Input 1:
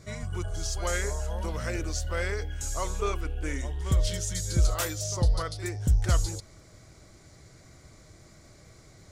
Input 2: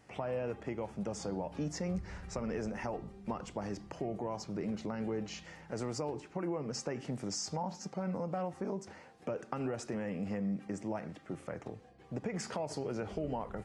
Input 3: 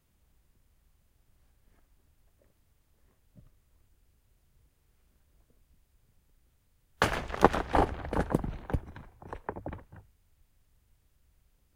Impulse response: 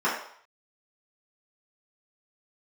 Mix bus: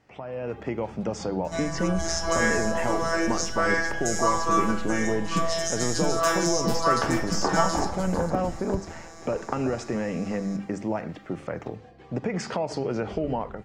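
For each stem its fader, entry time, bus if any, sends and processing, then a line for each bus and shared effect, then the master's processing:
−6.5 dB, 1.45 s, bus A, send −7.5 dB, echo send −11.5 dB, phases set to zero 165 Hz
−1.0 dB, 0.00 s, no bus, no send, no echo send, low-pass filter 5,500 Hz 12 dB per octave; mains-hum notches 50/100/150/200 Hz
−10.0 dB, 0.00 s, bus A, send −20.5 dB, no echo send, parametric band 7,400 Hz −14.5 dB 1.6 octaves
bus A: 0.0 dB, parametric band 6,300 Hz +9.5 dB 0.57 octaves; downward compressor, threshold −34 dBFS, peak gain reduction 11 dB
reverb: on, RT60 0.60 s, pre-delay 3 ms
echo: repeating echo 450 ms, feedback 38%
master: automatic gain control gain up to 10.5 dB

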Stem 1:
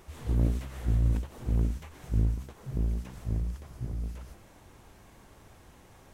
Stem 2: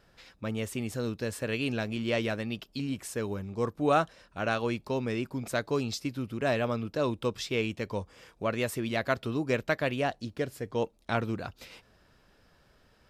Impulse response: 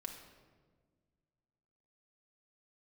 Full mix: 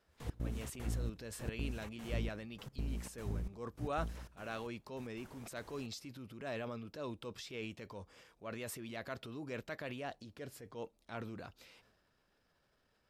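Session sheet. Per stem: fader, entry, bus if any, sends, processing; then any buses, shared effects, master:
−3.5 dB, 0.00 s, send −14.5 dB, downward compressor, threshold −28 dBFS, peak gain reduction 8.5 dB; gate pattern "..x.xxx.xxx." 151 BPM −24 dB
−12.5 dB, 0.00 s, no send, transient designer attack −5 dB, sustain +7 dB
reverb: on, RT60 1.6 s, pre-delay 4 ms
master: low-shelf EQ 180 Hz −4.5 dB

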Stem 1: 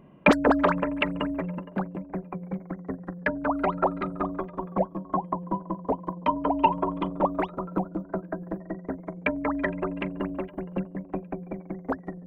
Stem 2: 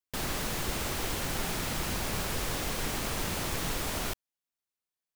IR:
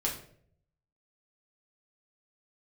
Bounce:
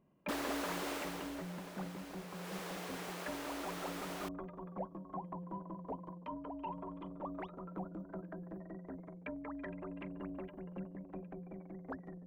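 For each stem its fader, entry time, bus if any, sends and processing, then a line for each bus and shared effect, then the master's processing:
−15.5 dB, 0.00 s, no send, transient designer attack −6 dB, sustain +5 dB; high-shelf EQ 3,000 Hz +9 dB; speech leveller within 4 dB 0.5 s
0:00.93 −2.5 dB → 0:01.47 −14.5 dB → 0:02.29 −14.5 dB → 0:02.55 −7 dB, 0.15 s, no send, Butterworth high-pass 320 Hz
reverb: not used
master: high-shelf EQ 3,000 Hz −9.5 dB

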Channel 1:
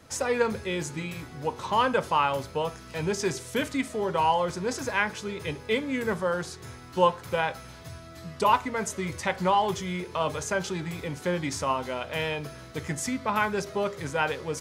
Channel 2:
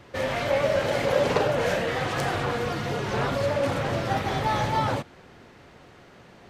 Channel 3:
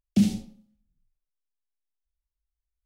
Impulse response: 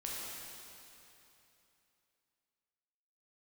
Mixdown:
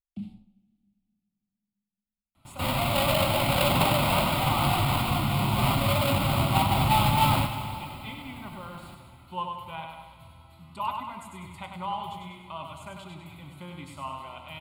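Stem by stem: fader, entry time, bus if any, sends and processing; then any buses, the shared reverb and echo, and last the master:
−10.5 dB, 2.35 s, send −8.5 dB, echo send −3.5 dB, notch filter 5,000 Hz, Q 10
−2.0 dB, 2.45 s, send −5.5 dB, no echo send, each half-wave held at its own peak
−15.0 dB, 0.00 s, send −21 dB, no echo send, low-pass filter 1,500 Hz 6 dB per octave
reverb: on, RT60 3.0 s, pre-delay 8 ms
echo: repeating echo 98 ms, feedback 48%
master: phaser with its sweep stopped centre 1,700 Hz, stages 6

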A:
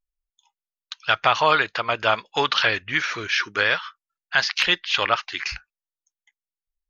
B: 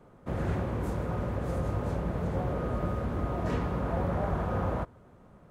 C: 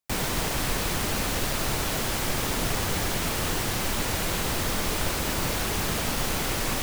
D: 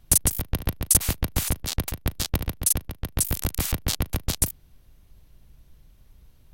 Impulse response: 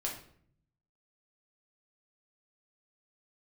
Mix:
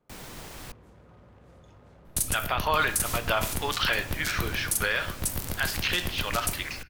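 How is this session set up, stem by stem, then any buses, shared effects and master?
−5.5 dB, 1.25 s, send −7.5 dB, amplitude tremolo 1.9 Hz, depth 60%
−17.0 dB, 0.00 s, no send, wave folding −25.5 dBFS; downward compressor 3 to 1, threshold −35 dBFS, peak gain reduction 5.5 dB; parametric band 3,800 Hz +5.5 dB 2.1 octaves
−15.0 dB, 0.00 s, muted 0:00.72–0:02.73, no send, no processing
−9.5 dB, 2.05 s, send −3.5 dB, no processing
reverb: on, RT60 0.60 s, pre-delay 6 ms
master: brickwall limiter −14 dBFS, peak gain reduction 7.5 dB

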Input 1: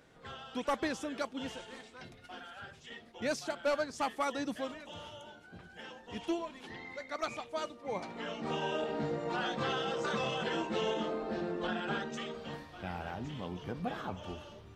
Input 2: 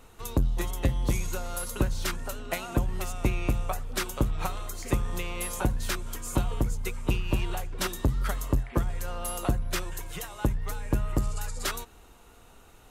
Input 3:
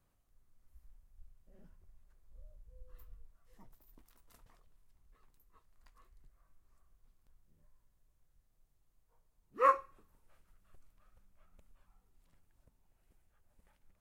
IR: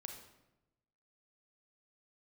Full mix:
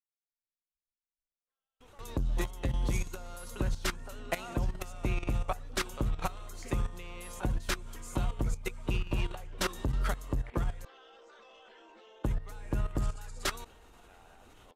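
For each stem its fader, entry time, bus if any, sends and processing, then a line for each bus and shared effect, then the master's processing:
−11.5 dB, 1.25 s, no send, Bessel high-pass filter 440 Hz, order 8; brickwall limiter −31 dBFS, peak gain reduction 9 dB
+1.0 dB, 1.80 s, muted 0:10.85–0:12.24, no send, no processing
−15.0 dB, 0.00 s, no send, no processing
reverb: not used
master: output level in coarse steps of 14 dB; noise gate −59 dBFS, range −27 dB; high-shelf EQ 12,000 Hz −11.5 dB

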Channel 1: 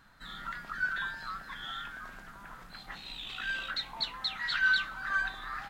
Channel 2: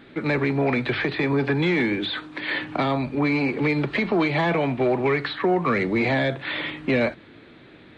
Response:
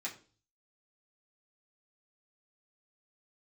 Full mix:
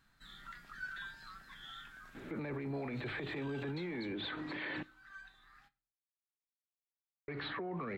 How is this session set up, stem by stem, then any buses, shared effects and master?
0:03.96 −8.5 dB → 0:04.29 −20 dB, 0.00 s, send −9 dB, parametric band 800 Hz −7 dB 2.3 octaves
−0.5 dB, 2.15 s, muted 0:04.83–0:07.28, send −21 dB, low-pass filter 1,600 Hz 6 dB per octave; downward compressor, threshold −27 dBFS, peak gain reduction 10 dB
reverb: on, RT60 0.40 s, pre-delay 3 ms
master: brickwall limiter −33 dBFS, peak gain reduction 15 dB

